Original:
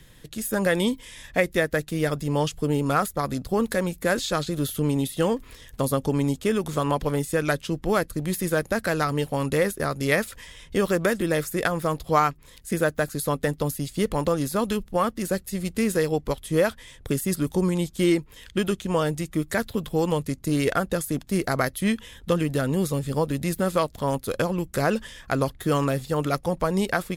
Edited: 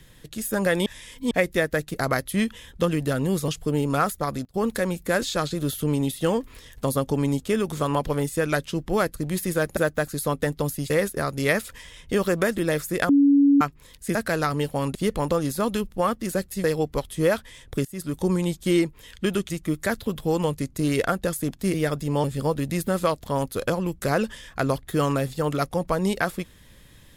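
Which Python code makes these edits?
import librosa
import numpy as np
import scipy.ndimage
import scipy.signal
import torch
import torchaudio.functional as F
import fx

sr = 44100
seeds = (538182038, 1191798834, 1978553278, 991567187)

y = fx.edit(x, sr, fx.reverse_span(start_s=0.86, length_s=0.45),
    fx.swap(start_s=1.94, length_s=0.5, other_s=21.42, other_length_s=1.54),
    fx.fade_down_up(start_s=2.99, length_s=0.93, db=-23.0, fade_s=0.42, curve='log'),
    fx.swap(start_s=8.73, length_s=0.8, other_s=12.78, other_length_s=1.13),
    fx.bleep(start_s=11.72, length_s=0.52, hz=282.0, db=-13.0),
    fx.cut(start_s=15.6, length_s=0.37),
    fx.fade_in_from(start_s=17.18, length_s=0.41, floor_db=-20.0),
    fx.cut(start_s=18.83, length_s=0.35), tone=tone)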